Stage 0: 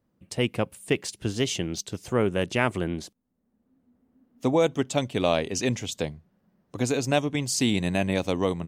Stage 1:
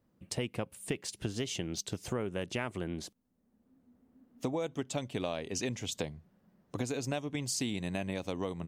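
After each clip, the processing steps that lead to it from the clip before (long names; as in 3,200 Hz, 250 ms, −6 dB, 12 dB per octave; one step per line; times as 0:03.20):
downward compressor 6 to 1, threshold −32 dBFS, peak gain reduction 14 dB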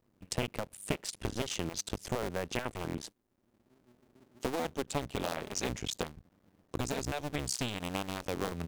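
sub-harmonics by changed cycles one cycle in 2, muted
level +3 dB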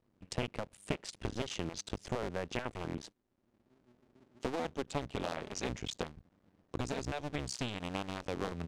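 high-frequency loss of the air 66 metres
level −2 dB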